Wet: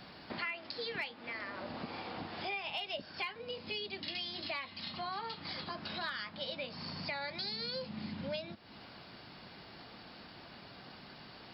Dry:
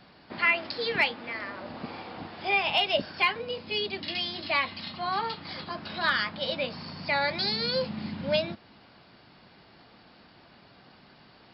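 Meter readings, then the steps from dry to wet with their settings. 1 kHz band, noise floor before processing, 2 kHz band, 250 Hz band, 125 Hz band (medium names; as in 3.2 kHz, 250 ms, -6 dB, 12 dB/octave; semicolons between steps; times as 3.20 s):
-11.5 dB, -56 dBFS, -12.5 dB, -8.0 dB, -7.5 dB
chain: treble shelf 4.1 kHz +5.5 dB; compression 4:1, threshold -42 dBFS, peak gain reduction 20 dB; trim +2 dB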